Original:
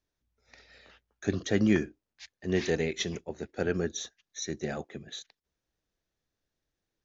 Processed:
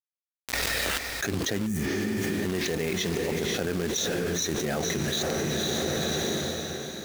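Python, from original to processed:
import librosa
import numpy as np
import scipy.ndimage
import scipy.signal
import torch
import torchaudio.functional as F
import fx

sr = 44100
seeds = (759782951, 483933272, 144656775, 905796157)

p1 = fx.quant_companded(x, sr, bits=4)
p2 = p1 + fx.echo_diffused(p1, sr, ms=507, feedback_pct=41, wet_db=-12.5, dry=0)
p3 = fx.spec_repair(p2, sr, seeds[0], start_s=1.69, length_s=0.54, low_hz=250.0, high_hz=5600.0, source='after')
p4 = fx.env_flatten(p3, sr, amount_pct=100)
y = p4 * 10.0 ** (-6.0 / 20.0)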